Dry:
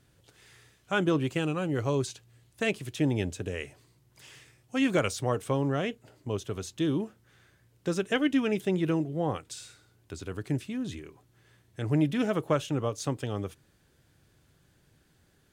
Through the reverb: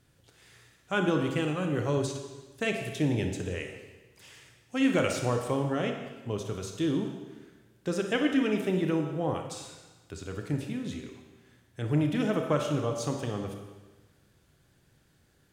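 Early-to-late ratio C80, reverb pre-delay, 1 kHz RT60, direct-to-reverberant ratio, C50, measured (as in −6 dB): 7.0 dB, 29 ms, 1.3 s, 3.5 dB, 5.0 dB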